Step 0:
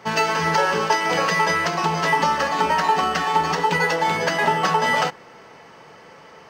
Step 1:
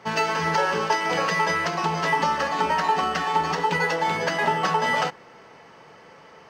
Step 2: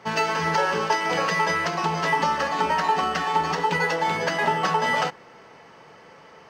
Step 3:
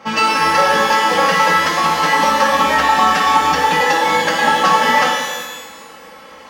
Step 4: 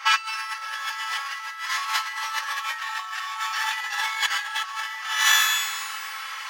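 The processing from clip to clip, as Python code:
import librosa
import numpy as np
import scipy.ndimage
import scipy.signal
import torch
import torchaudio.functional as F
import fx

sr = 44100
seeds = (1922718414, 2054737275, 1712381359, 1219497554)

y1 = fx.high_shelf(x, sr, hz=8800.0, db=-6.0)
y1 = y1 * 10.0 ** (-3.0 / 20.0)
y2 = y1
y3 = y2 + 0.89 * np.pad(y2, (int(3.7 * sr / 1000.0), 0))[:len(y2)]
y3 = fx.rev_shimmer(y3, sr, seeds[0], rt60_s=1.2, semitones=12, shimmer_db=-8, drr_db=0.5)
y3 = y3 * 10.0 ** (4.5 / 20.0)
y4 = scipy.signal.sosfilt(scipy.signal.cheby2(4, 80, 200.0, 'highpass', fs=sr, output='sos'), y3)
y4 = fx.over_compress(y4, sr, threshold_db=-25.0, ratio=-0.5)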